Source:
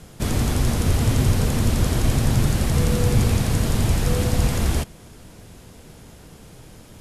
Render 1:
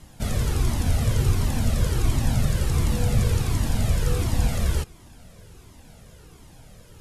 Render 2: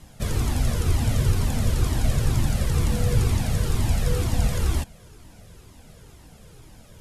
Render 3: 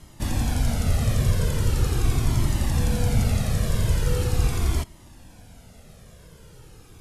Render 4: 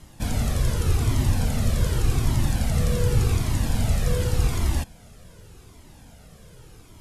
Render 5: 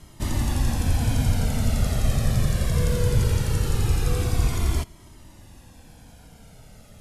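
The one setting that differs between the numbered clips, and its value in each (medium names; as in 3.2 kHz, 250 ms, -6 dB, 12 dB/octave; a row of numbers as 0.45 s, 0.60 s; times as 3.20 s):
Shepard-style flanger, rate: 1.4 Hz, 2.1 Hz, 0.41 Hz, 0.86 Hz, 0.2 Hz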